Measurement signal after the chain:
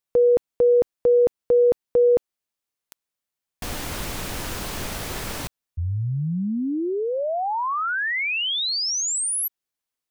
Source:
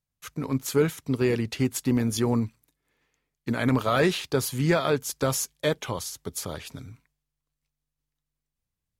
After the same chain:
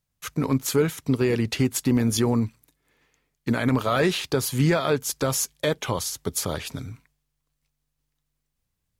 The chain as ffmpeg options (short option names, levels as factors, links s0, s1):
-af "alimiter=limit=0.126:level=0:latency=1:release=297,volume=2.11"